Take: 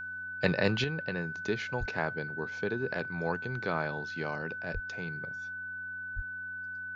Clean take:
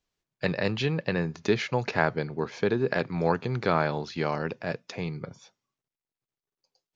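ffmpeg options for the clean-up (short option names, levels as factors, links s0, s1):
-filter_complex "[0:a]bandreject=f=90.9:t=h:w=4,bandreject=f=181.8:t=h:w=4,bandreject=f=272.7:t=h:w=4,bandreject=f=1500:w=30,asplit=3[s0][s1][s2];[s0]afade=t=out:st=1.79:d=0.02[s3];[s1]highpass=f=140:w=0.5412,highpass=f=140:w=1.3066,afade=t=in:st=1.79:d=0.02,afade=t=out:st=1.91:d=0.02[s4];[s2]afade=t=in:st=1.91:d=0.02[s5];[s3][s4][s5]amix=inputs=3:normalize=0,asplit=3[s6][s7][s8];[s6]afade=t=out:st=4.73:d=0.02[s9];[s7]highpass=f=140:w=0.5412,highpass=f=140:w=1.3066,afade=t=in:st=4.73:d=0.02,afade=t=out:st=4.85:d=0.02[s10];[s8]afade=t=in:st=4.85:d=0.02[s11];[s9][s10][s11]amix=inputs=3:normalize=0,asplit=3[s12][s13][s14];[s12]afade=t=out:st=6.15:d=0.02[s15];[s13]highpass=f=140:w=0.5412,highpass=f=140:w=1.3066,afade=t=in:st=6.15:d=0.02,afade=t=out:st=6.27:d=0.02[s16];[s14]afade=t=in:st=6.27:d=0.02[s17];[s15][s16][s17]amix=inputs=3:normalize=0,asetnsamples=n=441:p=0,asendcmd='0.84 volume volume 8dB',volume=1"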